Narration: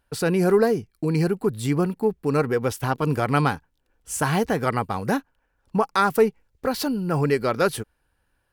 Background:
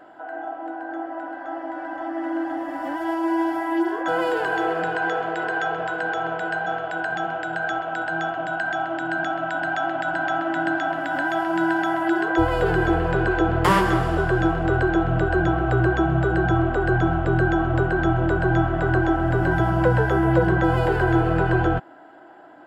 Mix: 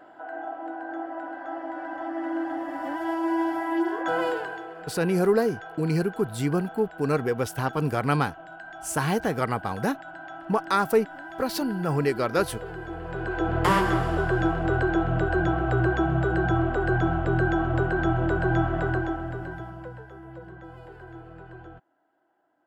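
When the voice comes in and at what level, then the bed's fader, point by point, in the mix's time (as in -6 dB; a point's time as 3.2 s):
4.75 s, -3.0 dB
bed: 4.28 s -3 dB
4.66 s -16.5 dB
12.89 s -16.5 dB
13.57 s -3.5 dB
18.79 s -3.5 dB
20.06 s -24.5 dB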